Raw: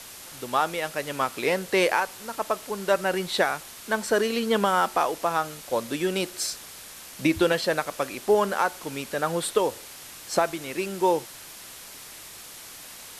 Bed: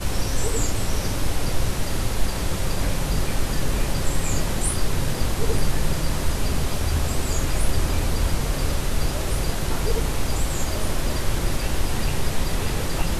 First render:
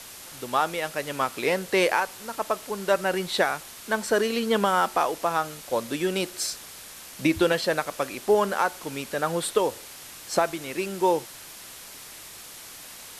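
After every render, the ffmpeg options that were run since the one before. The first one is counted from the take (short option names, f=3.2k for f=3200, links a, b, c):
-af anull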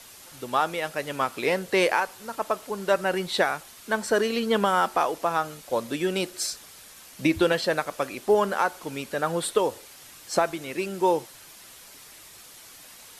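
-af "afftdn=nr=6:nf=-44"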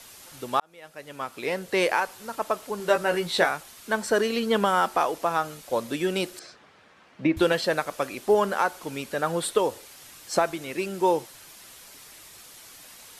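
-filter_complex "[0:a]asettb=1/sr,asplit=3[a][b][c];[a]atrim=end=2.784[d];[b]atrim=start=2.78:end=3.49,asetpts=PTS-STARTPTS,afade=t=in:d=0.004:c=qsin,afade=t=out:st=0.706:d=0.004:c=qsin,asplit=2[e][f];[f]adelay=18,volume=-5.5dB[g];[e][g]amix=inputs=2:normalize=0,atrim=end_sample=31311[h];[c]atrim=start=3.486[i];[d][h]acrossfade=d=0.004:c1=hsin:c2=qsin[j];[j][i]acrossfade=d=0.004:c1=qsin:c2=hsin,asettb=1/sr,asplit=3[k][l][m];[k]atrim=end=6.394[n];[l]atrim=start=6.39:end=7.37,asetpts=PTS-STARTPTS,afade=t=in:d=0.004:c=qsin,afade=t=out:st=0.976:d=0.004:c=qsin,highpass=110,lowpass=2k[o];[m]atrim=start=7.366[p];[n][o]acrossfade=d=0.004:c1=hsin:c2=qsin[q];[q][p]acrossfade=d=0.004:c1=qsin:c2=hsin,asplit=2[r][s];[r]atrim=end=0.6,asetpts=PTS-STARTPTS,afade=t=out:st=0.596:d=0.004:c=hsin[t];[s]atrim=start=0.6,asetpts=PTS-STARTPTS,afade=t=in:d=1.45[u];[t][u]concat=n=2:v=0:a=1"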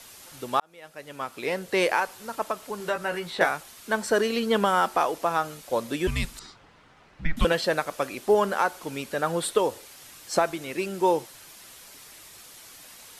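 -filter_complex "[0:a]asettb=1/sr,asplit=3[a][b][c];[a]atrim=end=2.464[d];[b]atrim=start=2.46:end=3.41,asetpts=PTS-STARTPTS,afade=t=in:d=0.004:c=qsin,afade=t=out:st=0.946:d=0.004:c=qsin,acrossover=split=260|780|2500[e][f][g][h];[e]acompressor=threshold=-41dB:ratio=3[i];[f]acompressor=threshold=-35dB:ratio=3[j];[g]acompressor=threshold=-28dB:ratio=3[k];[h]acompressor=threshold=-44dB:ratio=3[l];[i][j][k][l]amix=inputs=4:normalize=0[m];[c]atrim=start=3.406[n];[d][m]acrossfade=d=0.004:c1=hsin:c2=qsin[o];[o][n]acrossfade=d=0.004:c1=qsin:c2=hsin,asettb=1/sr,asplit=3[p][q][r];[p]atrim=end=6.074[s];[q]atrim=start=6.07:end=7.45,asetpts=PTS-STARTPTS,afade=t=in:d=0.004:c=qsin,afade=t=out:st=1.376:d=0.004:c=qsin,afreqshift=-320[t];[r]atrim=start=7.446[u];[s][t]acrossfade=d=0.004:c1=hsin:c2=qsin[v];[v][u]acrossfade=d=0.004:c1=qsin:c2=hsin"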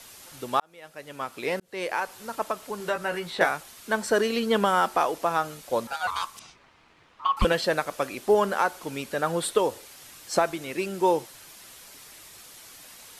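-filter_complex "[0:a]asettb=1/sr,asplit=3[a][b][c];[a]atrim=end=5.874[d];[b]atrim=start=5.87:end=7.42,asetpts=PTS-STARTPTS,afade=t=in:d=0.004:c=qsin,afade=t=out:st=1.546:d=0.004:c=qsin,aeval=exprs='val(0)*sin(2*PI*1100*n/s)':c=same[e];[c]atrim=start=7.416[f];[d][e]acrossfade=d=0.004:c1=hsin:c2=qsin[g];[g][f]acrossfade=d=0.004:c1=qsin:c2=hsin,asplit=2[h][i];[h]atrim=end=1.6,asetpts=PTS-STARTPTS,afade=t=out:st=1.596:d=0.004:c=hsin[j];[i]atrim=start=1.6,asetpts=PTS-STARTPTS,afade=t=in:d=0.59[k];[j][k]concat=n=2:v=0:a=1"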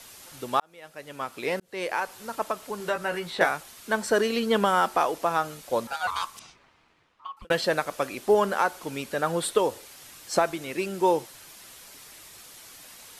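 -filter_complex "[0:a]asplit=2[a][b];[a]atrim=end=7.5,asetpts=PTS-STARTPTS,afade=t=out:st=6.38:d=1.12[c];[b]atrim=start=7.5,asetpts=PTS-STARTPTS,afade=t=in:d=0.004:c=hsin[d];[c][d]concat=n=2:v=0:a=1"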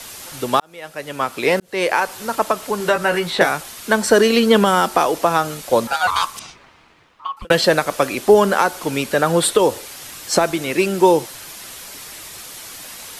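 -filter_complex "[0:a]acrossover=split=410|3000[a][b][c];[b]acompressor=threshold=-25dB:ratio=6[d];[a][d][c]amix=inputs=3:normalize=0,alimiter=level_in=12dB:limit=-1dB:release=50:level=0:latency=1"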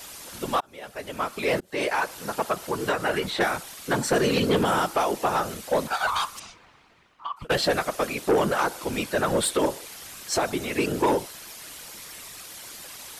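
-af "afftfilt=real='hypot(re,im)*cos(2*PI*random(0))':imag='hypot(re,im)*sin(2*PI*random(1))':win_size=512:overlap=0.75,asoftclip=type=tanh:threshold=-15dB"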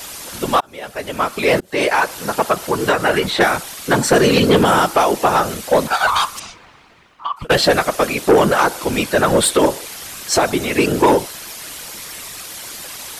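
-af "volume=9.5dB"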